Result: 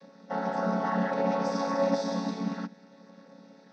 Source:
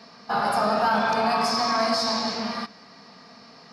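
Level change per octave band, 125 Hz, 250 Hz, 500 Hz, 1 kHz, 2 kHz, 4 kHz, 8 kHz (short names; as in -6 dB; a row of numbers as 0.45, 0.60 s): +3.5, 0.0, -2.5, -9.0, -10.5, -17.5, -12.0 dB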